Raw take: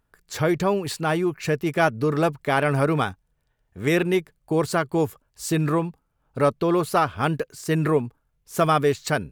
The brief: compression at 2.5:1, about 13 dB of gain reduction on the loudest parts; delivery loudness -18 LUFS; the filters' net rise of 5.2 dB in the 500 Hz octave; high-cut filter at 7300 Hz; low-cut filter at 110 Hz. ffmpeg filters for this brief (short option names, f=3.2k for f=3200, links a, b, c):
-af "highpass=110,lowpass=7.3k,equalizer=f=500:t=o:g=6.5,acompressor=threshold=-31dB:ratio=2.5,volume=13dB"